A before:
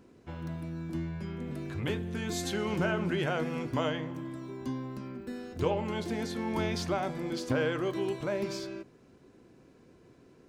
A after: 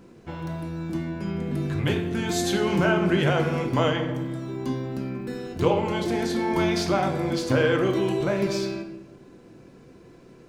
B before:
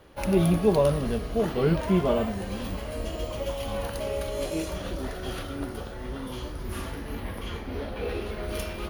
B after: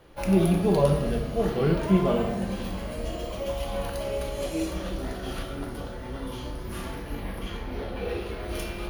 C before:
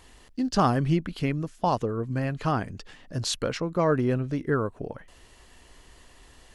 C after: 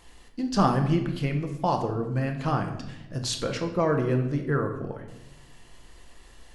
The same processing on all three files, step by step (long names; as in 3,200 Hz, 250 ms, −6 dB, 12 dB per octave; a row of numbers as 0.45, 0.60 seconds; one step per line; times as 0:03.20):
rectangular room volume 320 cubic metres, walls mixed, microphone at 0.77 metres
normalise the peak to −9 dBFS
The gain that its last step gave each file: +6.5, −2.0, −2.0 decibels